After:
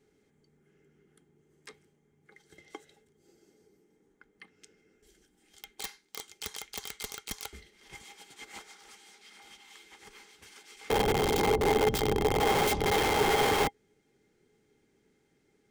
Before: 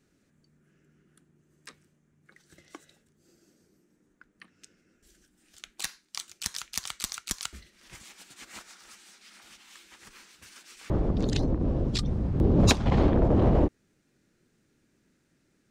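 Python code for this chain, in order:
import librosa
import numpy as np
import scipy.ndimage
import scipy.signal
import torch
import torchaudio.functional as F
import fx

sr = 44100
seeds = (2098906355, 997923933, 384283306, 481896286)

y = (np.mod(10.0 ** (22.0 / 20.0) * x + 1.0, 2.0) - 1.0) / 10.0 ** (22.0 / 20.0)
y = fx.small_body(y, sr, hz=(430.0, 810.0, 2100.0, 3200.0), ring_ms=60, db=15)
y = y * 10.0 ** (-3.5 / 20.0)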